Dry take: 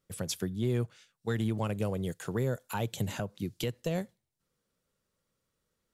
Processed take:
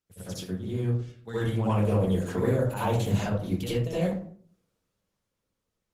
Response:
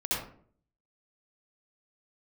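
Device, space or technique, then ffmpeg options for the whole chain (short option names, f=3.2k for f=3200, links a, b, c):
speakerphone in a meeting room: -filter_complex "[0:a]asettb=1/sr,asplit=3[a][b][c];[a]atrim=end=1.514[d];[b]atrim=start=1.51:end=3.37,asetpts=PTS-STARTPTS,afade=t=in:d=0.004:c=qsin,afade=t=out:st=1.856:d=0.004:c=qsin,equalizer=f=720:w=0.97:g=3.5[e];[c]atrim=start=3.366[f];[d][e]acrossfade=d=0.004:c1=hsin:c2=qsin[g];[g][f]acrossfade=d=0.004:c1=qsin:c2=hsin[h];[1:a]atrim=start_sample=2205[i];[h][i]afir=irnorm=-1:irlink=0,dynaudnorm=f=200:g=13:m=7dB,volume=-8.5dB" -ar 48000 -c:a libopus -b:a 16k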